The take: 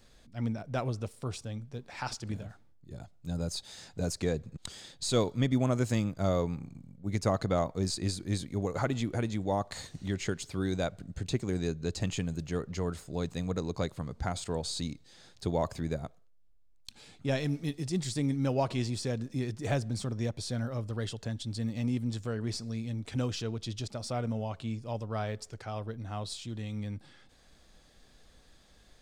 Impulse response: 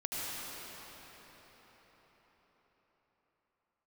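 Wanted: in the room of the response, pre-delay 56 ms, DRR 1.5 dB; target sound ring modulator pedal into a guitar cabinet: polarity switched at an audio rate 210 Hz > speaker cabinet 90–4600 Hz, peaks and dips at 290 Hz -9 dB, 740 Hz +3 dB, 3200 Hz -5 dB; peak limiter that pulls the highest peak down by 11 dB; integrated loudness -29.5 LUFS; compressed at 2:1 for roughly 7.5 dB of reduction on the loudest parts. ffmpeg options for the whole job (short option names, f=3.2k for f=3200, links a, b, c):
-filter_complex "[0:a]acompressor=threshold=-37dB:ratio=2,alimiter=level_in=9.5dB:limit=-24dB:level=0:latency=1,volume=-9.5dB,asplit=2[a][b];[1:a]atrim=start_sample=2205,adelay=56[c];[b][c]afir=irnorm=-1:irlink=0,volume=-7dB[d];[a][d]amix=inputs=2:normalize=0,aeval=exprs='val(0)*sgn(sin(2*PI*210*n/s))':c=same,highpass=90,equalizer=f=290:t=q:w=4:g=-9,equalizer=f=740:t=q:w=4:g=3,equalizer=f=3.2k:t=q:w=4:g=-5,lowpass=f=4.6k:w=0.5412,lowpass=f=4.6k:w=1.3066,volume=13dB"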